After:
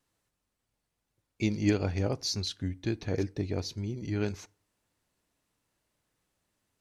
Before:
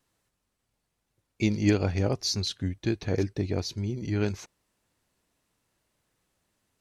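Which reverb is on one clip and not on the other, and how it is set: FDN reverb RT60 0.45 s, low-frequency decay 1.05×, high-frequency decay 0.6×, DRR 19 dB; trim -3.5 dB

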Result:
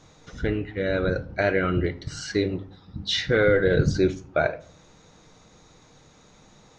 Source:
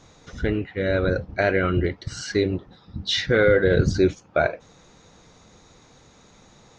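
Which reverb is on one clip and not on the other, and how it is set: simulated room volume 580 m³, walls furnished, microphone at 0.52 m; trim -2 dB

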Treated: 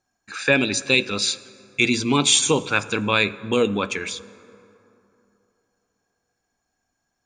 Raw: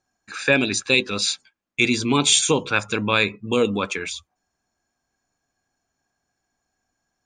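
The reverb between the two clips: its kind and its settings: plate-style reverb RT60 3.1 s, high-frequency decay 0.45×, DRR 17 dB

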